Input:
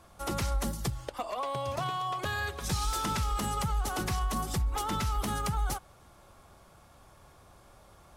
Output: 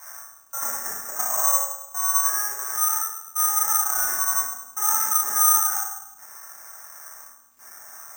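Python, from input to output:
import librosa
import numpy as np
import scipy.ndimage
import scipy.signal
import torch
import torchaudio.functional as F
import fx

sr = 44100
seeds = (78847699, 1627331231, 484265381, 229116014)

y = fx.delta_mod(x, sr, bps=32000, step_db=-46.5)
y = scipy.signal.sosfilt(scipy.signal.butter(2, 1100.0, 'highpass', fs=sr, output='sos'), y)
y = fx.high_shelf_res(y, sr, hz=2300.0, db=-10.5, q=3.0)
y = fx.rider(y, sr, range_db=4, speed_s=2.0)
y = fx.step_gate(y, sr, bpm=85, pattern='x..xxxxx', floor_db=-60.0, edge_ms=4.5)
y = fx.dmg_crackle(y, sr, seeds[0], per_s=71.0, level_db=-51.0)
y = fx.air_absorb(y, sr, metres=220.0)
y = fx.room_early_taps(y, sr, ms=(33, 58), db=(-6.5, -6.5))
y = fx.rev_fdn(y, sr, rt60_s=0.91, lf_ratio=1.35, hf_ratio=0.25, size_ms=23.0, drr_db=-7.0)
y = (np.kron(y[::6], np.eye(6)[0]) * 6)[:len(y)]
y = F.gain(torch.from_numpy(y), -1.5).numpy()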